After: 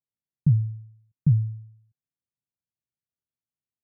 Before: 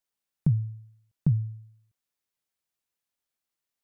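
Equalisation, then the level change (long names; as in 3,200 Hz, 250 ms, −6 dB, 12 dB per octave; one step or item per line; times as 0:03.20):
resonant band-pass 120 Hz, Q 1.4
+5.0 dB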